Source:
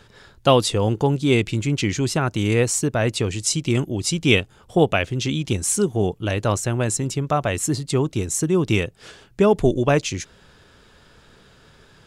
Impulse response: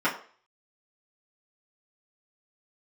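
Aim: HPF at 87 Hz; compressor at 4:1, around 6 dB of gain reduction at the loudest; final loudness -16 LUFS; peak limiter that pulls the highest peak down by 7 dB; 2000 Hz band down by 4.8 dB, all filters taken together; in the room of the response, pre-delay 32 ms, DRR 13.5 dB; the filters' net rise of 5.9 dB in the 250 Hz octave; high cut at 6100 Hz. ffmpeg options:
-filter_complex "[0:a]highpass=87,lowpass=6.1k,equalizer=f=250:t=o:g=8,equalizer=f=2k:t=o:g=-6.5,acompressor=threshold=-15dB:ratio=4,alimiter=limit=-11.5dB:level=0:latency=1,asplit=2[a][b];[1:a]atrim=start_sample=2205,adelay=32[c];[b][c]afir=irnorm=-1:irlink=0,volume=-27.5dB[d];[a][d]amix=inputs=2:normalize=0,volume=7dB"

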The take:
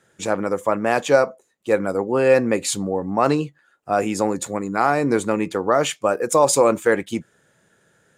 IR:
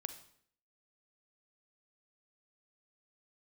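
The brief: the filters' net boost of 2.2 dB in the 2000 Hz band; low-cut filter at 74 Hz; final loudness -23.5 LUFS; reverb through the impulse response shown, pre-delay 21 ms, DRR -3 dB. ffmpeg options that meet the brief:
-filter_complex "[0:a]highpass=74,equalizer=f=2k:t=o:g=3,asplit=2[a][b];[1:a]atrim=start_sample=2205,adelay=21[c];[b][c]afir=irnorm=-1:irlink=0,volume=5dB[d];[a][d]amix=inputs=2:normalize=0,volume=-8.5dB"

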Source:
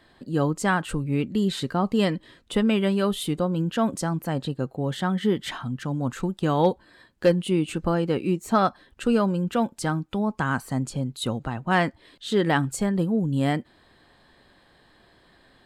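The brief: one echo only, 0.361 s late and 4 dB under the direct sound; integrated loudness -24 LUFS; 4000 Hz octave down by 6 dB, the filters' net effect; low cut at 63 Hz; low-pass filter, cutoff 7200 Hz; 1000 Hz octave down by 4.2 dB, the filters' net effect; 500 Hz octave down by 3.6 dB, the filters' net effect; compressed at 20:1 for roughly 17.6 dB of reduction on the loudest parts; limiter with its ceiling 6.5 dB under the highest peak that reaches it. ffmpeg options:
-af "highpass=63,lowpass=7.2k,equalizer=f=500:t=o:g=-3.5,equalizer=f=1k:t=o:g=-4,equalizer=f=4k:t=o:g=-7.5,acompressor=threshold=-36dB:ratio=20,alimiter=level_in=8dB:limit=-24dB:level=0:latency=1,volume=-8dB,aecho=1:1:361:0.631,volume=17.5dB"

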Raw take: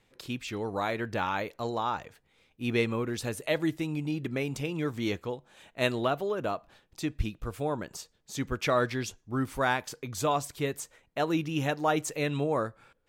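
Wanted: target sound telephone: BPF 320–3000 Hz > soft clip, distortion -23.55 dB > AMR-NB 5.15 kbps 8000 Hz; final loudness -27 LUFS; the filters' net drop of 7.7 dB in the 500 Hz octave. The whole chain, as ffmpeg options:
-af "highpass=320,lowpass=3k,equalizer=f=500:t=o:g=-9,asoftclip=threshold=-17dB,volume=11.5dB" -ar 8000 -c:a libopencore_amrnb -b:a 5150

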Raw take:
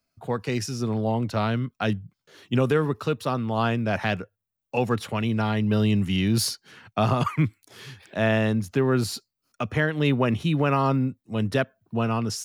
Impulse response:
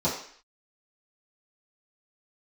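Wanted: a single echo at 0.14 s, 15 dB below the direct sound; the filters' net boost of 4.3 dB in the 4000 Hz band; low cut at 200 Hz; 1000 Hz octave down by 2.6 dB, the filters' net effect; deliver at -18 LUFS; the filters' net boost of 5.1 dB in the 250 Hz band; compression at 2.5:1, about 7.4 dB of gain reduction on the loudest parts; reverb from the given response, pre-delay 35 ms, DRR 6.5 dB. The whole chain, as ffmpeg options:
-filter_complex "[0:a]highpass=200,equalizer=f=250:t=o:g=8.5,equalizer=f=1k:t=o:g=-4.5,equalizer=f=4k:t=o:g=6,acompressor=threshold=-27dB:ratio=2.5,aecho=1:1:140:0.178,asplit=2[a][b];[1:a]atrim=start_sample=2205,adelay=35[c];[b][c]afir=irnorm=-1:irlink=0,volume=-18dB[d];[a][d]amix=inputs=2:normalize=0,volume=9dB"

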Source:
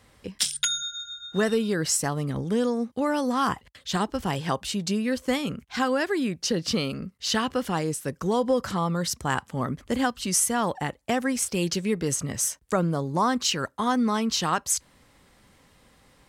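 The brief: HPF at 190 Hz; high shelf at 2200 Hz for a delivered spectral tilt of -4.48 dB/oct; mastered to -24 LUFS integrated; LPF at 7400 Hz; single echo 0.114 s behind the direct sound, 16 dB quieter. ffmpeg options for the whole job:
-af "highpass=190,lowpass=7.4k,highshelf=f=2.2k:g=-7,aecho=1:1:114:0.158,volume=5dB"

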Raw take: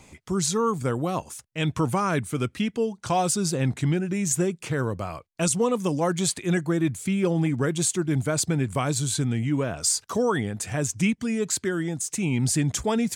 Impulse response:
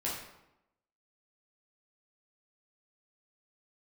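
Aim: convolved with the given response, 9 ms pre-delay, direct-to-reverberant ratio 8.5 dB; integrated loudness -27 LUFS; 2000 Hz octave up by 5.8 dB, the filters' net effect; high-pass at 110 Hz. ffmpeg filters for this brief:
-filter_complex "[0:a]highpass=110,equalizer=f=2k:t=o:g=7.5,asplit=2[a][b];[1:a]atrim=start_sample=2205,adelay=9[c];[b][c]afir=irnorm=-1:irlink=0,volume=-13dB[d];[a][d]amix=inputs=2:normalize=0,volume=-2.5dB"

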